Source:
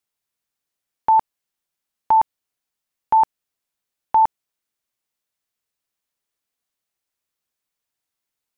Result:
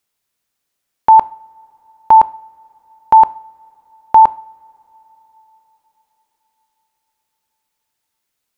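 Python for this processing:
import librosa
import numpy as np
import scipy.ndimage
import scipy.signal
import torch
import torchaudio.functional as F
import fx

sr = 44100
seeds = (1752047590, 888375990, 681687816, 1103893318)

y = fx.rev_double_slope(x, sr, seeds[0], early_s=0.48, late_s=4.8, knee_db=-22, drr_db=17.0)
y = y * 10.0 ** (8.0 / 20.0)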